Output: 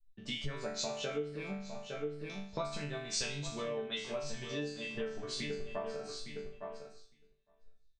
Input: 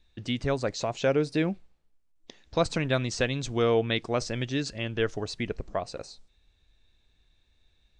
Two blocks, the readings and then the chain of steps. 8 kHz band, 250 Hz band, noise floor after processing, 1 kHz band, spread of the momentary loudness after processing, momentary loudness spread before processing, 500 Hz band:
-1.5 dB, -12.5 dB, -69 dBFS, -10.5 dB, 8 LU, 9 LU, -10.5 dB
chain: de-hum 56.83 Hz, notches 2; in parallel at +1 dB: limiter -20 dBFS, peak gain reduction 8.5 dB; on the sum: resonator bank D3 sus4, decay 0.62 s; on a send: feedback echo 0.859 s, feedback 18%, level -10 dB; on the sum: compressor 20:1, threshold -48 dBFS, peak gain reduction 19 dB; three-band expander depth 100%; gain +12.5 dB

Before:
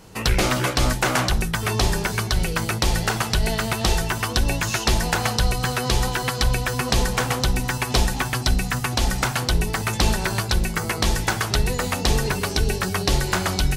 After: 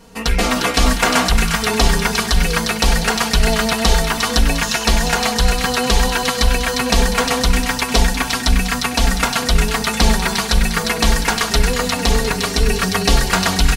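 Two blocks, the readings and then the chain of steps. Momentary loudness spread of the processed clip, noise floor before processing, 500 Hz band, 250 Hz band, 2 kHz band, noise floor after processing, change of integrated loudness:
2 LU, -29 dBFS, +6.0 dB, +6.5 dB, +6.0 dB, -24 dBFS, +5.5 dB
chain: high shelf 9700 Hz -3.5 dB; comb 4.3 ms, depth 99%; AGC; on a send: thin delay 0.354 s, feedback 44%, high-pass 1500 Hz, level -4 dB; on the sum: gain -1 dB

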